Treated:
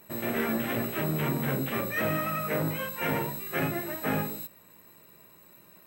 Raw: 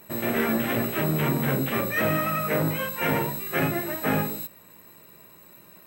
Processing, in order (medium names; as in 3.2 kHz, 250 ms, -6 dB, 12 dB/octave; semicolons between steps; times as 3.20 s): trim -4.5 dB